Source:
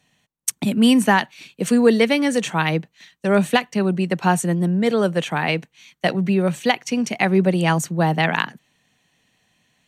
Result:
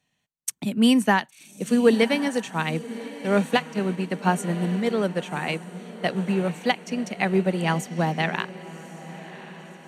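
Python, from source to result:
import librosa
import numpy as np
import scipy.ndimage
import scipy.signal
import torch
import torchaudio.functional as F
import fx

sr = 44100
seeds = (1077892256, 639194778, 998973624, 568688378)

y = fx.echo_diffused(x, sr, ms=1098, feedback_pct=55, wet_db=-11.0)
y = fx.upward_expand(y, sr, threshold_db=-27.0, expansion=1.5)
y = F.gain(torch.from_numpy(y), -2.0).numpy()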